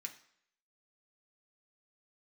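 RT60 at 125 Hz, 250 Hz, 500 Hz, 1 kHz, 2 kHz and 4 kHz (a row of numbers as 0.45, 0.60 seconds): 0.55, 0.60, 0.65, 0.65, 0.70, 0.65 seconds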